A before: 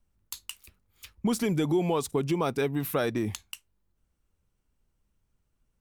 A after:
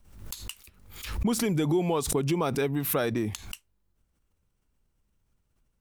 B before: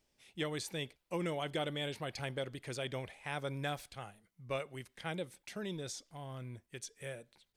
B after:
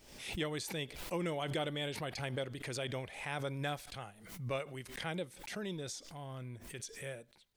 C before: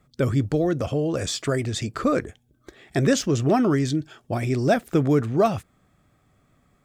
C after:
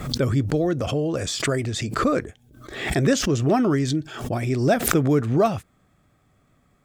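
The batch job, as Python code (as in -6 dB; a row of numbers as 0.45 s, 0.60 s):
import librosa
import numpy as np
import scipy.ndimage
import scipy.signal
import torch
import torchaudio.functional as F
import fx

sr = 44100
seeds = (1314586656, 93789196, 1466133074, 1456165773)

y = fx.pre_swell(x, sr, db_per_s=71.0)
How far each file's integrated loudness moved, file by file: +1.0 LU, +0.5 LU, +1.0 LU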